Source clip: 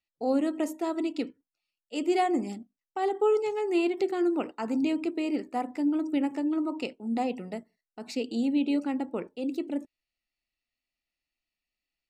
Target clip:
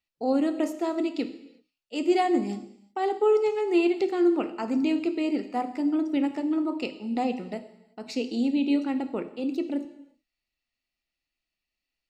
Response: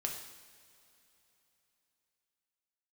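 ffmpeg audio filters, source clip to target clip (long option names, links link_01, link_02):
-filter_complex "[0:a]asplit=2[link_01][link_02];[link_02]bass=frequency=250:gain=3,treble=frequency=4000:gain=8[link_03];[1:a]atrim=start_sample=2205,afade=type=out:start_time=0.43:duration=0.01,atrim=end_sample=19404,lowpass=5400[link_04];[link_03][link_04]afir=irnorm=-1:irlink=0,volume=-3.5dB[link_05];[link_01][link_05]amix=inputs=2:normalize=0,volume=-2.5dB"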